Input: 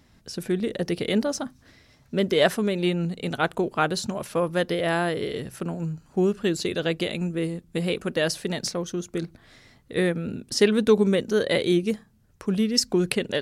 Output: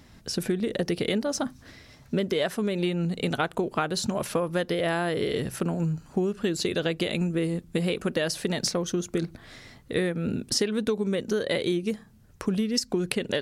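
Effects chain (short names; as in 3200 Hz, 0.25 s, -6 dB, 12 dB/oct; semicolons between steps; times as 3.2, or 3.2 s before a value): compressor 12:1, threshold -28 dBFS, peak gain reduction 16 dB; gain +5.5 dB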